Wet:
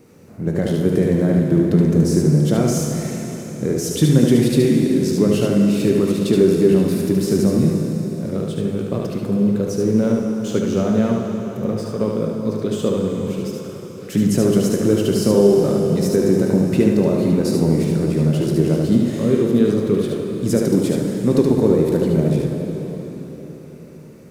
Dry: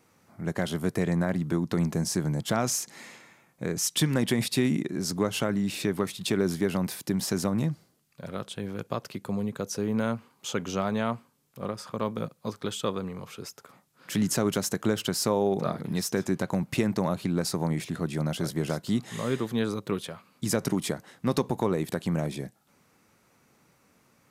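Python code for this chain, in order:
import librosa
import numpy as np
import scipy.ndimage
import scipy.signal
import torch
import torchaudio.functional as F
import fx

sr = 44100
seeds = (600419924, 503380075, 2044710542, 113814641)

p1 = fx.law_mismatch(x, sr, coded='mu')
p2 = fx.low_shelf_res(p1, sr, hz=620.0, db=9.5, q=1.5)
p3 = fx.notch(p2, sr, hz=3300.0, q=30.0)
p4 = p3 + fx.echo_single(p3, sr, ms=74, db=-3.5, dry=0)
p5 = fx.rev_plate(p4, sr, seeds[0], rt60_s=4.4, hf_ratio=0.85, predelay_ms=0, drr_db=2.0)
y = p5 * librosa.db_to_amplitude(-2.0)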